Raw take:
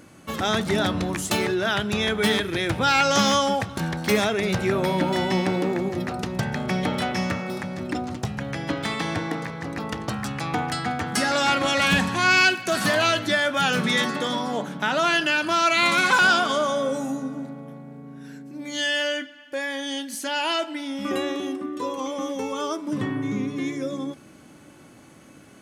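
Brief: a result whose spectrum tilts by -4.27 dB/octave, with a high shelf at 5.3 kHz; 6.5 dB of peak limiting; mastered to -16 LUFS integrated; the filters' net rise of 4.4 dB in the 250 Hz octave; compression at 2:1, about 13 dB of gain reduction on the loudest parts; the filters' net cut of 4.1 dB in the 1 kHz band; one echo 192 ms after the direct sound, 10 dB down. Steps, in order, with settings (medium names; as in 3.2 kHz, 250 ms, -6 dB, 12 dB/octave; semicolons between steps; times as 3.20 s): peaking EQ 250 Hz +6 dB; peaking EQ 1 kHz -6.5 dB; treble shelf 5.3 kHz +4 dB; compression 2:1, threshold -39 dBFS; peak limiter -24.5 dBFS; delay 192 ms -10 dB; trim +18 dB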